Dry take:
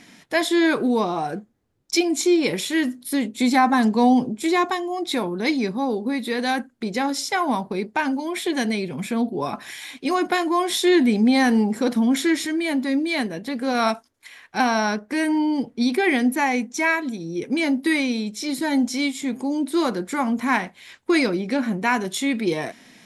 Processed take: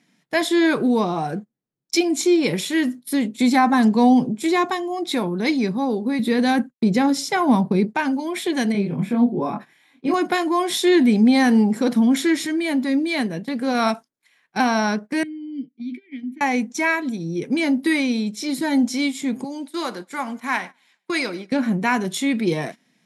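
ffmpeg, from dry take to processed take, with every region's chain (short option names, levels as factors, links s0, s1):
-filter_complex "[0:a]asettb=1/sr,asplit=3[s0][s1][s2];[s0]atrim=end=6.194[s3];[s1]atrim=start=6.19:end=7.95,asetpts=PTS-STARTPTS,afade=t=in:d=0.004:c=qsin,afade=t=out:st=1.756:d=0.004:c=qsin,agate=range=0.0224:threshold=0.00708:ratio=3:release=100:detection=peak,lowshelf=f=330:g=9.5[s4];[s2]atrim=start=7.946[s5];[s3][s4]acrossfade=d=0.004:c1=hsin:c2=qsin[s6];[s6][s5]acrossfade=d=0.004:c1=qsin:c2=hsin,asettb=1/sr,asplit=3[s7][s8][s9];[s7]atrim=end=8.724[s10];[s8]atrim=start=8.72:end=10.14,asetpts=PTS-STARTPTS,afade=t=in:d=0.004:c=qsin,afade=t=out:st=1.416:d=0.004:c=qsin,equalizer=f=7500:w=0.32:g=-14,asplit=2[s11][s12];[s12]adelay=25,volume=0.794[s13];[s11][s13]amix=inputs=2:normalize=0,atrim=end_sample=62622[s14];[s9]atrim=start=10.136[s15];[s10][s14]acrossfade=d=0.004:c1=hsin:c2=qsin[s16];[s16][s15]acrossfade=d=0.004:c1=qsin:c2=hsin,asettb=1/sr,asplit=3[s17][s18][s19];[s17]atrim=end=15.234[s20];[s18]atrim=start=15.23:end=16.41,asetpts=PTS-STARTPTS,afade=t=in:d=0.004:c=qsin,afade=t=out:st=1.176:d=0.004:c=qsin,asplit=2[s21][s22];[s22]adelay=13,volume=0.266[s23];[s21][s23]amix=inputs=2:normalize=0,atrim=end_sample=52038,acompressor=threshold=0.0708:ratio=8:attack=3.2:release=140:knee=1:detection=peak,asplit=3[s24][s25][s26];[s24]bandpass=f=270:t=q:w=8,volume=1[s27];[s25]bandpass=f=2290:t=q:w=8,volume=0.501[s28];[s26]bandpass=f=3010:t=q:w=8,volume=0.355[s29];[s27][s28][s29]amix=inputs=3:normalize=0[s30];[s19]atrim=start=16.406[s31];[s20][s30]acrossfade=d=0.004:c1=hsin:c2=qsin[s32];[s32][s31]acrossfade=d=0.004:c1=qsin:c2=hsin,asettb=1/sr,asplit=3[s33][s34][s35];[s33]atrim=end=19.444[s36];[s34]atrim=start=19.44:end=21.52,asetpts=PTS-STARTPTS,afade=t=in:d=0.004:c=qsin,afade=t=out:st=2.076:d=0.004:c=qsin,highpass=f=840:p=1,aecho=1:1:103|206|309|412:0.0891|0.0463|0.0241|0.0125,atrim=end_sample=91728[s37];[s35]atrim=start=21.516[s38];[s36][s37]acrossfade=d=0.004:c1=hsin:c2=qsin[s39];[s39][s38]acrossfade=d=0.004:c1=qsin:c2=hsin,agate=range=0.158:threshold=0.02:ratio=16:detection=peak,lowshelf=f=110:t=q:w=3:g=-10"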